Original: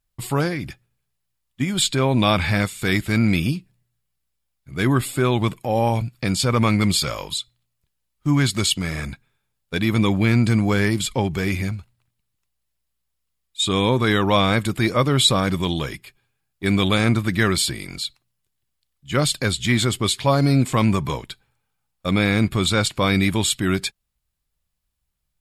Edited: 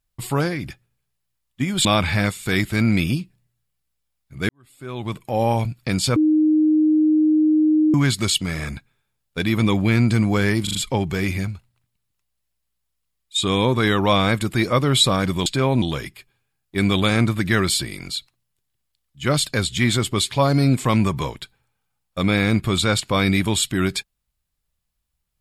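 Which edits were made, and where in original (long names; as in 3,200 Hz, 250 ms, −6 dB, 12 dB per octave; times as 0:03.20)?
0:01.85–0:02.21: move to 0:15.70
0:04.85–0:05.72: fade in quadratic
0:06.52–0:08.30: beep over 309 Hz −13 dBFS
0:10.99: stutter 0.04 s, 4 plays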